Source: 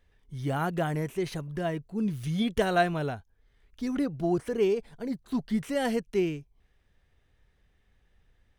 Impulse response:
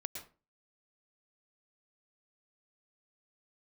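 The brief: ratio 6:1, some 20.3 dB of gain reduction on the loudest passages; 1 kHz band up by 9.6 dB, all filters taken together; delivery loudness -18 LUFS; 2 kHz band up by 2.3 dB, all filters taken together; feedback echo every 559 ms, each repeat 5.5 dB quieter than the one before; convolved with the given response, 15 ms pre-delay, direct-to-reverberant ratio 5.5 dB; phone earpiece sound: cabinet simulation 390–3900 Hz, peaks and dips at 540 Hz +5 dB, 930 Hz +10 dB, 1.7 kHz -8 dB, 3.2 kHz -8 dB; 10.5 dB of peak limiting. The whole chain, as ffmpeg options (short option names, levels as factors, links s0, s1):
-filter_complex "[0:a]equalizer=f=1000:t=o:g=7.5,equalizer=f=2000:t=o:g=6,acompressor=threshold=0.0141:ratio=6,alimiter=level_in=3.76:limit=0.0631:level=0:latency=1,volume=0.266,aecho=1:1:559|1118|1677|2236|2795|3354|3913:0.531|0.281|0.149|0.079|0.0419|0.0222|0.0118,asplit=2[s0][s1];[1:a]atrim=start_sample=2205,adelay=15[s2];[s1][s2]afir=irnorm=-1:irlink=0,volume=0.631[s3];[s0][s3]amix=inputs=2:normalize=0,highpass=390,equalizer=f=540:t=q:w=4:g=5,equalizer=f=930:t=q:w=4:g=10,equalizer=f=1700:t=q:w=4:g=-8,equalizer=f=3200:t=q:w=4:g=-8,lowpass=f=3900:w=0.5412,lowpass=f=3900:w=1.3066,volume=21.1"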